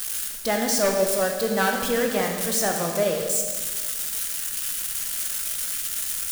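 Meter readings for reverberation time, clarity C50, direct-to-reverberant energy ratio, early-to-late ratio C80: 1.6 s, 3.5 dB, 1.5 dB, 5.5 dB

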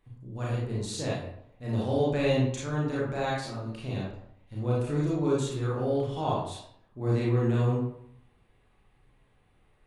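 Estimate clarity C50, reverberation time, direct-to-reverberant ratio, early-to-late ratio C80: 0.0 dB, 0.70 s, -6.5 dB, 4.5 dB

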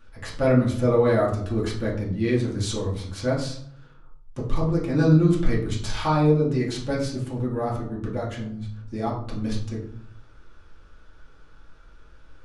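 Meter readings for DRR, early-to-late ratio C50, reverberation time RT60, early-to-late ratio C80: -6.0 dB, 5.5 dB, 0.65 s, 9.5 dB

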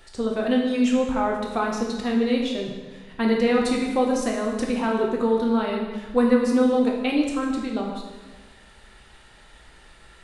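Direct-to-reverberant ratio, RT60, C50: -1.0 dB, 1.4 s, 3.0 dB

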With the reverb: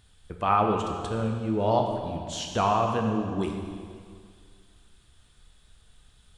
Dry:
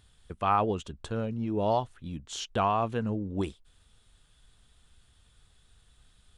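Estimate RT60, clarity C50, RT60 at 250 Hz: 2.1 s, 4.0 dB, 2.1 s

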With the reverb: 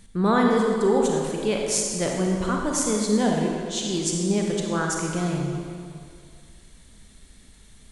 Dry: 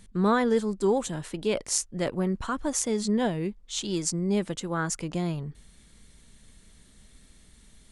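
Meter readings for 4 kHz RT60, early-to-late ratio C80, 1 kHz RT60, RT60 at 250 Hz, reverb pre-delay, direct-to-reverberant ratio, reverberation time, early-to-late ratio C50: 1.8 s, 2.0 dB, 2.3 s, 2.2 s, 31 ms, 0.0 dB, 2.3 s, 0.5 dB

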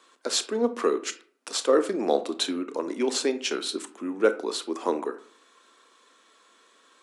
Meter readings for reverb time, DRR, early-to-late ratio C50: 0.50 s, 10.5 dB, 14.5 dB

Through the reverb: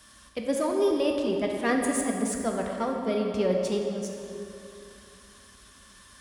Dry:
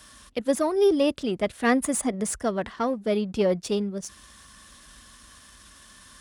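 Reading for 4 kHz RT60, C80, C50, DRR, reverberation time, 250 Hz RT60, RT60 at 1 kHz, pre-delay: 2.0 s, 3.5 dB, 2.5 dB, 1.0 dB, 3.0 s, 3.0 s, 3.0 s, 7 ms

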